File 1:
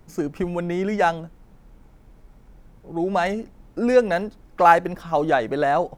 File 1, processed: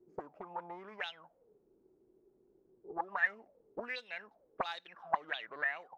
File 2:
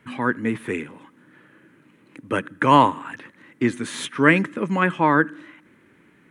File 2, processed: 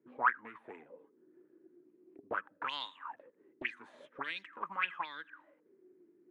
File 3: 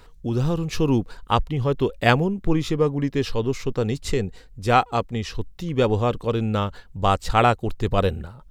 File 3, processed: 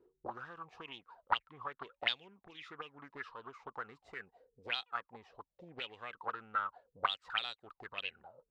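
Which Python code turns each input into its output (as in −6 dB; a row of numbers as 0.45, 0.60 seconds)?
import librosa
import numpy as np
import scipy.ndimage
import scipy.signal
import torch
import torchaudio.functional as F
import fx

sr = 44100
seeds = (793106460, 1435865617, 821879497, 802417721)

y = fx.auto_wah(x, sr, base_hz=350.0, top_hz=3700.0, q=15.0, full_db=-13.5, direction='up')
y = fx.doppler_dist(y, sr, depth_ms=0.34)
y = y * librosa.db_to_amplitude(4.0)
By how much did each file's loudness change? −18.0, −17.5, −17.5 LU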